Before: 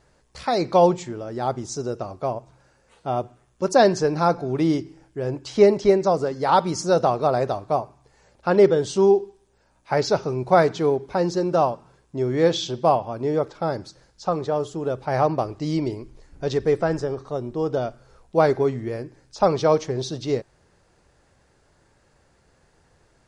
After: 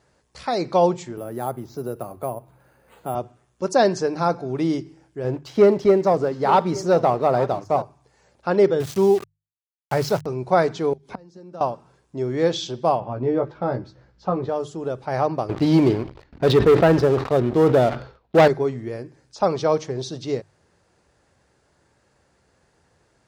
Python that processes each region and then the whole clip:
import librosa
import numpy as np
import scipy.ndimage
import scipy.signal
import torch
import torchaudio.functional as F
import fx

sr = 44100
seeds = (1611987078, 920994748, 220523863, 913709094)

y = fx.chain(x, sr, fx.air_absorb(metres=180.0),
    fx.resample_bad(factor=4, down='filtered', up='hold'),
    fx.band_squash(depth_pct=40), at=(1.17, 3.15))
y = fx.chain(y, sr, fx.lowpass(hz=2600.0, slope=6),
    fx.echo_single(ms=868, db=-17.5),
    fx.leveller(passes=1), at=(5.24, 7.82))
y = fx.chain(y, sr, fx.sample_gate(floor_db=-29.0),
    fx.peak_eq(hz=110.0, db=12.0, octaves=1.0), at=(8.8, 10.26))
y = fx.chain(y, sr, fx.peak_eq(hz=200.0, db=9.5, octaves=0.29),
    fx.gate_flip(shuts_db=-17.0, range_db=-25),
    fx.band_squash(depth_pct=100), at=(10.93, 11.61))
y = fx.chain(y, sr, fx.lowpass(hz=2700.0, slope=12),
    fx.low_shelf(hz=220.0, db=6.5),
    fx.doubler(ms=16.0, db=-5), at=(13.0, 14.49))
y = fx.chain(y, sr, fx.cheby1_lowpass(hz=3900.0, order=3),
    fx.leveller(passes=3),
    fx.sustainer(db_per_s=120.0), at=(15.49, 18.48))
y = scipy.signal.sosfilt(scipy.signal.butter(2, 58.0, 'highpass', fs=sr, output='sos'), y)
y = fx.hum_notches(y, sr, base_hz=50, count=3)
y = y * 10.0 ** (-1.5 / 20.0)